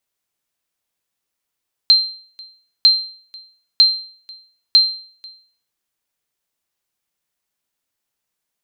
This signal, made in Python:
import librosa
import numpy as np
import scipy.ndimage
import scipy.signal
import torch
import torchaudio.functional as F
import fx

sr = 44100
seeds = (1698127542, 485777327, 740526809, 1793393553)

y = fx.sonar_ping(sr, hz=4140.0, decay_s=0.48, every_s=0.95, pings=4, echo_s=0.49, echo_db=-26.5, level_db=-3.5)